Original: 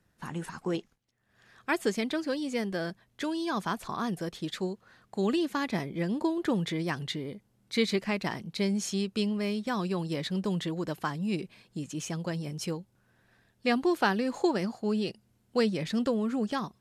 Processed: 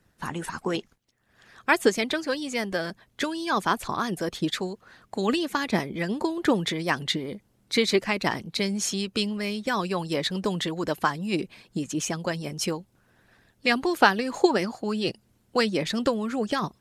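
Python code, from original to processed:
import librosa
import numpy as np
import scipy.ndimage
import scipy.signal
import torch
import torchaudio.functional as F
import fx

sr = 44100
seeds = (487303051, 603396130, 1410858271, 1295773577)

y = fx.hpss(x, sr, part='percussive', gain_db=9)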